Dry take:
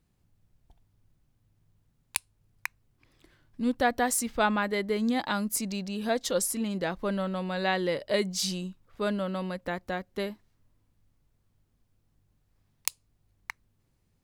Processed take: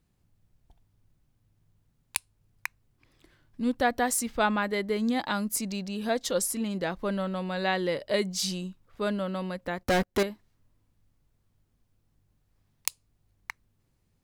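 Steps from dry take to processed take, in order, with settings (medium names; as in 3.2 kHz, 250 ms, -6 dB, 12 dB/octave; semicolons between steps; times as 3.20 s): 9.83–10.23 s: waveshaping leveller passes 5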